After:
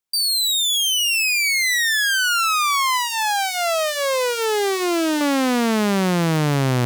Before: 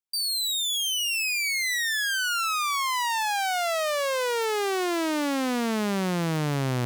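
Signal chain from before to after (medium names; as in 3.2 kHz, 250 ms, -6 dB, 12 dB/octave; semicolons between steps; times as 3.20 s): 2.97–5.21 s: Shepard-style phaser rising 1.6 Hz; trim +7.5 dB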